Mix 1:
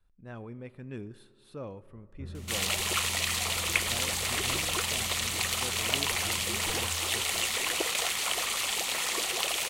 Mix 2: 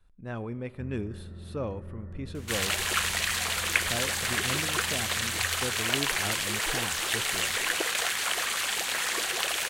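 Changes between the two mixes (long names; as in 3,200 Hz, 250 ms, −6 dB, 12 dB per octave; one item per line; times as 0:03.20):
speech +7.0 dB
first sound: entry −1.40 s
second sound: add parametric band 1,600 Hz +13 dB 0.32 octaves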